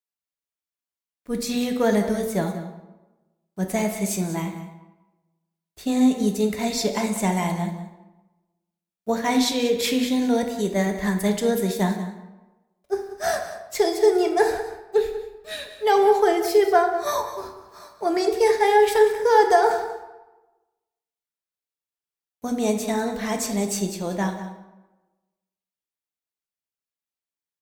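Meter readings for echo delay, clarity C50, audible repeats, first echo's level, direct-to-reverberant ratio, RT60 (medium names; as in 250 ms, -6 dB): 189 ms, 6.5 dB, 1, -13.5 dB, 3.5 dB, 1.1 s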